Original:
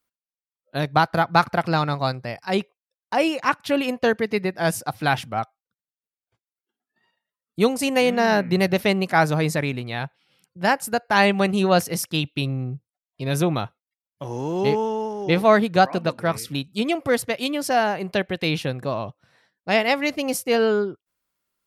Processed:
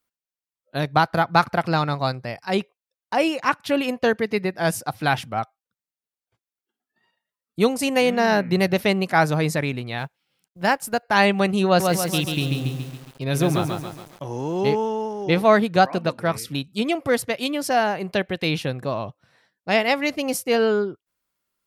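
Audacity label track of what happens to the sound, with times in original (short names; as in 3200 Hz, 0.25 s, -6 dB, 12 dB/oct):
9.980000	11.030000	G.711 law mismatch coded by A
11.660000	14.250000	lo-fi delay 0.139 s, feedback 55%, word length 7-bit, level -4 dB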